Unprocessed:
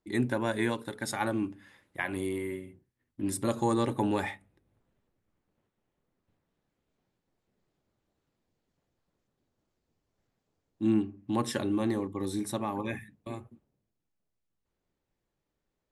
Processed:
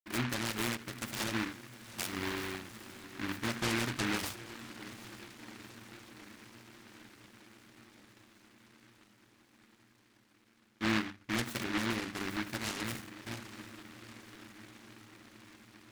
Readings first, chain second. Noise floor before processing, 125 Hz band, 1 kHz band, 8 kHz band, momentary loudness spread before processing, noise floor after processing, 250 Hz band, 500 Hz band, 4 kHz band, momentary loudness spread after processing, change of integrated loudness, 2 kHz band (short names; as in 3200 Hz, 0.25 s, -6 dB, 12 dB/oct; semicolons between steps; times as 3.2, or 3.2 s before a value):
-84 dBFS, -4.5 dB, -5.0 dB, +1.0 dB, 14 LU, -67 dBFS, -6.5 dB, -9.5 dB, +6.0 dB, 22 LU, -5.0 dB, +2.0 dB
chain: LPF 3700 Hz 12 dB/oct; bell 540 Hz -4.5 dB; notches 50/100/150/200/250/300 Hz; in parallel at -1.5 dB: limiter -23 dBFS, peak gain reduction 8 dB; on the sum: crossover distortion -57 dBFS; on a send: diffused feedback echo 0.81 s, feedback 71%, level -14.5 dB; on the sum: noise-modulated delay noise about 1600 Hz, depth 0.39 ms; gain -8 dB